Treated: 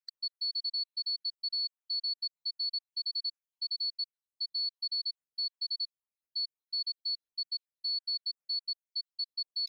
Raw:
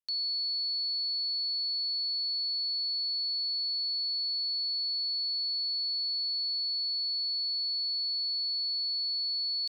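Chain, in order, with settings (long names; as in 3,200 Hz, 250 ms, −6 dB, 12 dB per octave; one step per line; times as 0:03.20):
time-frequency cells dropped at random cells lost 69%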